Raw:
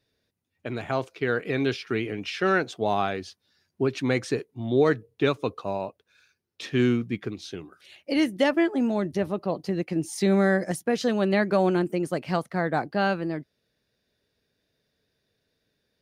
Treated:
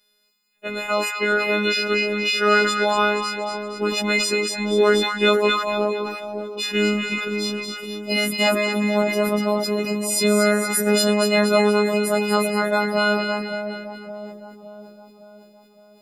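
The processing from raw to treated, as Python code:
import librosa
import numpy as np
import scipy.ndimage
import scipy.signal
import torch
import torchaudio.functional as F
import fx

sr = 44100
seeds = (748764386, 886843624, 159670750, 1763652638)

y = fx.freq_snap(x, sr, grid_st=3)
y = fx.peak_eq(y, sr, hz=110.0, db=-11.0, octaves=1.2)
y = fx.robotise(y, sr, hz=208.0)
y = fx.echo_split(y, sr, split_hz=920.0, low_ms=562, high_ms=236, feedback_pct=52, wet_db=-6.5)
y = fx.sustainer(y, sr, db_per_s=51.0)
y = y * 10.0 ** (5.5 / 20.0)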